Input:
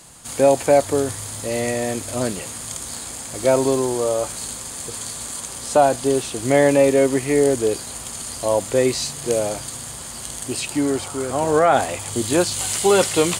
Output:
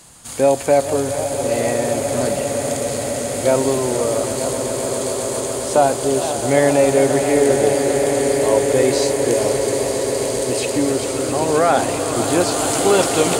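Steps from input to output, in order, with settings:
echo that builds up and dies away 133 ms, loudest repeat 8, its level −12.5 dB
feedback echo with a swinging delay time 457 ms, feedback 71%, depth 192 cents, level −12.5 dB

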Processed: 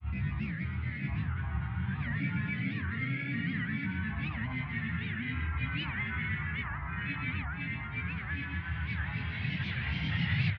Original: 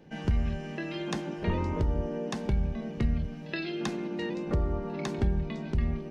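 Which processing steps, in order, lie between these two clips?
flat-topped bell 780 Hz −16 dB 2.6 octaves
mains-hum notches 50/100/150/200/250/300/350 Hz
reversed playback
upward compression, threshold −34 dBFS
reversed playback
extreme stretch with random phases 14×, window 0.25 s, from 0:00.69
granular cloud, pitch spread up and down by 7 semitones
loudspeaker in its box 130–5,900 Hz, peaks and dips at 140 Hz +6 dB, 280 Hz +4 dB, 620 Hz −3 dB, 890 Hz −9 dB, 2,100 Hz −8 dB, 3,600 Hz +6 dB
on a send: single-tap delay 72 ms −5 dB
on the sum: wrong playback speed 78 rpm record played at 45 rpm
wow of a warped record 78 rpm, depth 250 cents
level +4.5 dB

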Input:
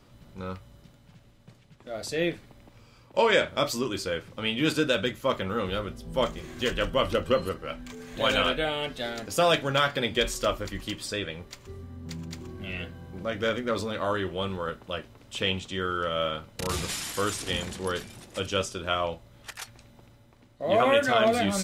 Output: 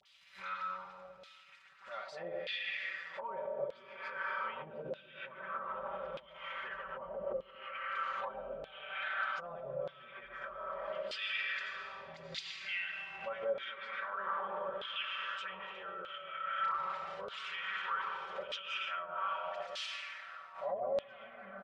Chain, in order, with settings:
high-pass filter 41 Hz 24 dB per octave
all-pass dispersion highs, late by 58 ms, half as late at 1,300 Hz
convolution reverb RT60 3.9 s, pre-delay 50 ms, DRR 1 dB
leveller curve on the samples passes 1
treble cut that deepens with the level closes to 330 Hz, closed at −16.5 dBFS
guitar amp tone stack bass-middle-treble 10-0-10
brickwall limiter −34.5 dBFS, peak gain reduction 10.5 dB
comb filter 5.2 ms, depth 86%
auto-filter band-pass saw down 0.81 Hz 510–3,700 Hz
background raised ahead of every attack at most 140 dB per second
level +8 dB

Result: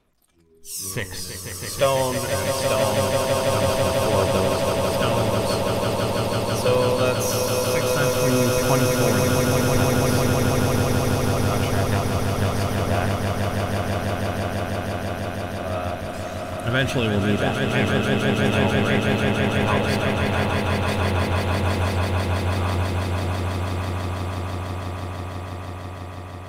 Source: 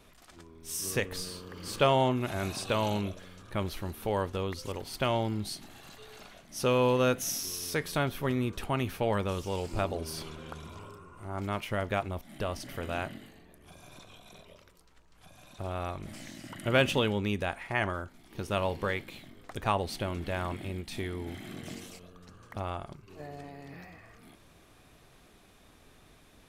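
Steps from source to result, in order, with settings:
noise reduction from a noise print of the clip's start 17 dB
in parallel at −5 dB: soft clipping −27 dBFS, distortion −9 dB
on the sum: phase shifter 0.23 Hz, delay 2.1 ms, feedback 52%
echo that builds up and dies away 164 ms, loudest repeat 8, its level −6 dB

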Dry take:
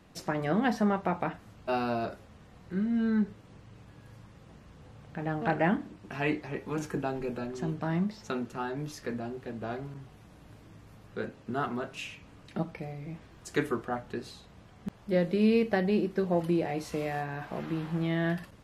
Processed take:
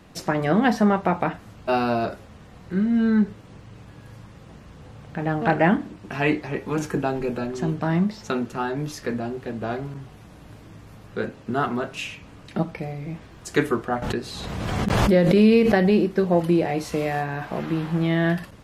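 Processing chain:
0:14.02–0:16.13: background raised ahead of every attack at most 25 dB per second
level +8 dB

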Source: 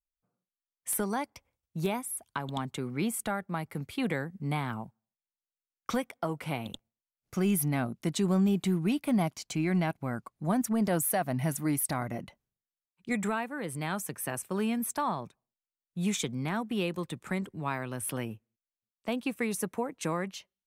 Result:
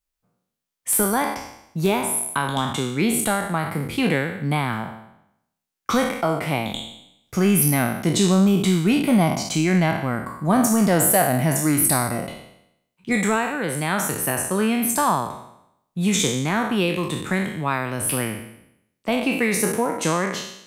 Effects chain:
peak hold with a decay on every bin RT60 0.78 s
level +8.5 dB

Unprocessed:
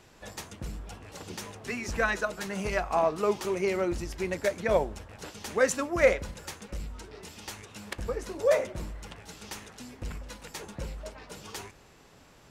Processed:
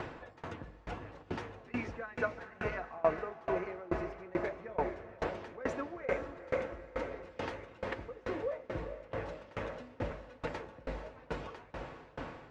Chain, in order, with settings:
downward compressor 1.5 to 1, threshold −48 dBFS, peak gain reduction 11.5 dB
low-pass filter 1,800 Hz 12 dB per octave
upward compression, threshold −38 dBFS
low-shelf EQ 140 Hz −8 dB
notch comb filter 200 Hz
on a send: feedback delay with all-pass diffusion 459 ms, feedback 74%, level −7.5 dB
on the sum: tremolo with a ramp in dB decaying 2.3 Hz, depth 25 dB
level +11 dB

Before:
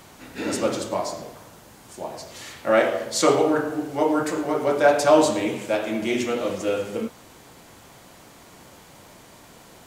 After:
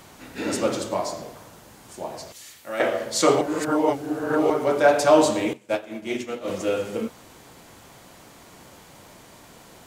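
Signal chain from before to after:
0:02.32–0:02.80: first-order pre-emphasis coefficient 0.8
0:03.41–0:04.50: reverse
0:05.53–0:06.48: expander for the loud parts 2.5 to 1, over −34 dBFS

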